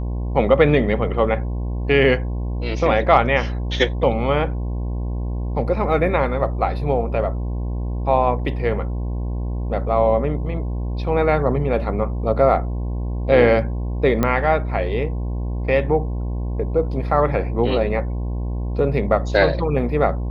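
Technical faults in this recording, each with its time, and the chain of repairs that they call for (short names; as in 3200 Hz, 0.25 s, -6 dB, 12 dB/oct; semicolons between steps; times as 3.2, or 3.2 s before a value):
buzz 60 Hz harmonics 18 -24 dBFS
14.23 pop -7 dBFS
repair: de-click; de-hum 60 Hz, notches 18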